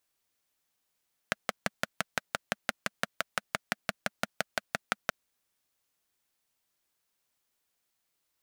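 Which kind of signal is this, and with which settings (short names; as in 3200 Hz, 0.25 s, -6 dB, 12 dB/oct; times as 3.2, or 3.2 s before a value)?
single-cylinder engine model, steady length 3.78 s, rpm 700, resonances 210/630/1400 Hz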